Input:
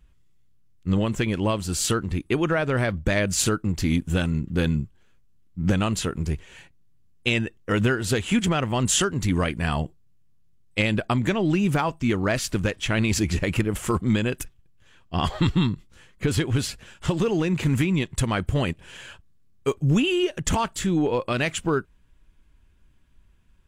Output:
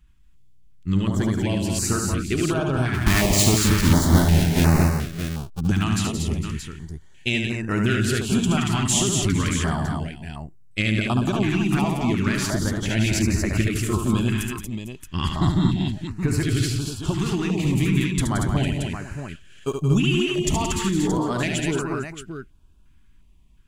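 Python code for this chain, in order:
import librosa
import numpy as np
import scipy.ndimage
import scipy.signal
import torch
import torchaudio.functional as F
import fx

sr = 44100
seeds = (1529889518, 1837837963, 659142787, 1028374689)

y = fx.halfwave_hold(x, sr, at=(2.93, 5.59), fade=0.02)
y = fx.peak_eq(y, sr, hz=500.0, db=-12.5, octaves=0.26)
y = fx.echo_multitap(y, sr, ms=(73, 174, 233, 452, 625), db=(-5.0, -7.5, -4.5, -16.0, -9.0))
y = fx.filter_held_notch(y, sr, hz=2.8, low_hz=540.0, high_hz=3300.0)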